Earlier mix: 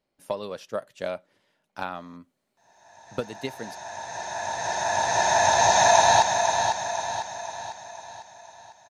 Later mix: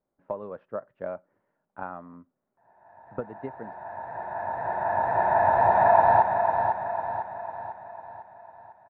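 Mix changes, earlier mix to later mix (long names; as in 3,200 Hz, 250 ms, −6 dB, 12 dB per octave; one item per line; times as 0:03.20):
speech −3.0 dB
master: add low-pass filter 1,500 Hz 24 dB per octave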